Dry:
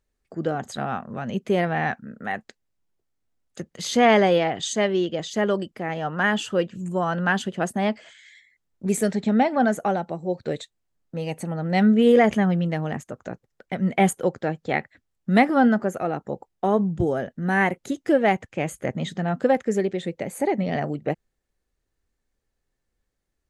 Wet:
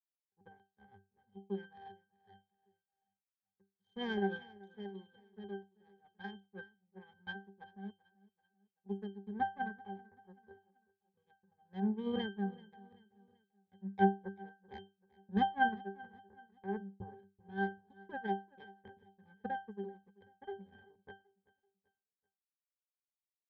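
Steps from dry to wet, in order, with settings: power-law waveshaper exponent 3; pitch-class resonator G, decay 0.25 s; feedback delay 385 ms, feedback 42%, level -22 dB; trim +7.5 dB

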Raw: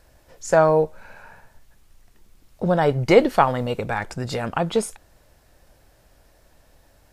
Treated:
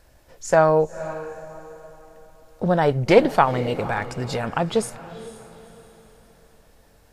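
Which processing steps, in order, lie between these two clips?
echo that smears into a reverb 487 ms, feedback 41%, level -15 dB; loudspeaker Doppler distortion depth 0.13 ms

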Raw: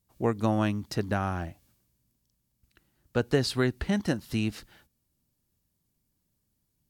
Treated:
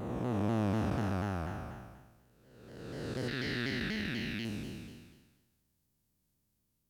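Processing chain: spectral blur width 781 ms; 3.28–4.45 s: graphic EQ 125/500/1000/2000/4000/8000 Hz -5/-7/-7/+10/+6/-11 dB; vibrato with a chosen wave saw down 4.1 Hz, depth 160 cents

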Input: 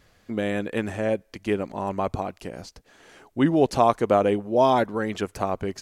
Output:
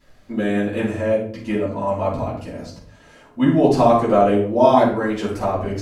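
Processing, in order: 0.86–3.58 s: comb of notches 380 Hz; simulated room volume 620 m³, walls furnished, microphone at 9.2 m; trim -8.5 dB

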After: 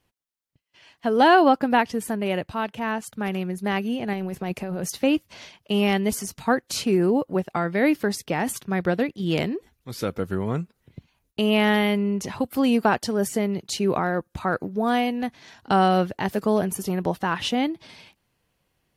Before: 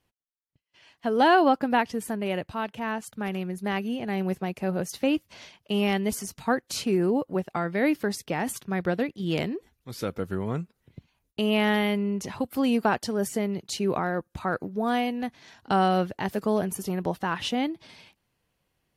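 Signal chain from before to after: 4.13–4.90 s: compressor with a negative ratio -32 dBFS, ratio -1; trim +3.5 dB

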